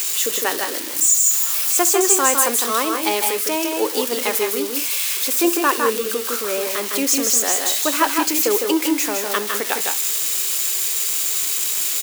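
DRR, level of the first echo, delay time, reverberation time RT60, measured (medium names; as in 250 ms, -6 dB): no reverb, -19.5 dB, 67 ms, no reverb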